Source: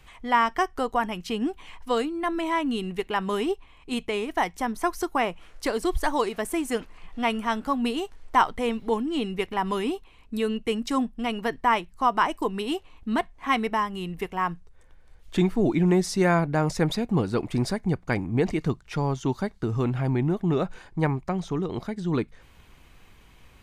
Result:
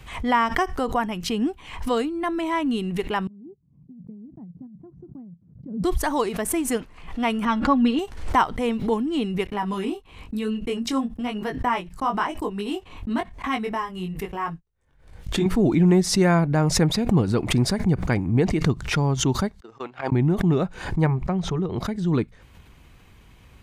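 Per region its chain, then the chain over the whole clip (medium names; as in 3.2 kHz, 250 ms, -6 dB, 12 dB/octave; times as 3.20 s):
3.27–5.84 s: gate -42 dBFS, range -25 dB + Butterworth band-pass 160 Hz, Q 2.1 + compressor with a negative ratio -45 dBFS
7.45–7.99 s: low-pass 4.3 kHz + comb 3.6 ms, depth 77%
9.47–15.46 s: gate -42 dBFS, range -24 dB + chorus 1 Hz, delay 19 ms, depth 3.2 ms
19.60–20.12 s: band-pass 610–5400 Hz + gate -36 dBFS, range -47 dB
21.06–21.78 s: treble shelf 4.8 kHz -11.5 dB + band-stop 280 Hz, Q 5.3
whole clip: high-pass 82 Hz 6 dB/octave; bass shelf 190 Hz +10.5 dB; swell ahead of each attack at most 87 dB/s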